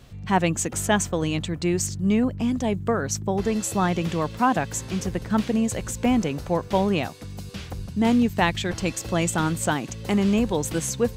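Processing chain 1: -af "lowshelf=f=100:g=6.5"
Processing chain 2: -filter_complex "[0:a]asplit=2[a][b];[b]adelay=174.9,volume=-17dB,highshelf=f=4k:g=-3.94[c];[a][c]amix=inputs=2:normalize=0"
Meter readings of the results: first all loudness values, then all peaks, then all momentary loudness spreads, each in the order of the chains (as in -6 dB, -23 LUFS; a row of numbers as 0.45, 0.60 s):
-23.5, -24.0 LUFS; -6.0, -6.0 dBFS; 6, 6 LU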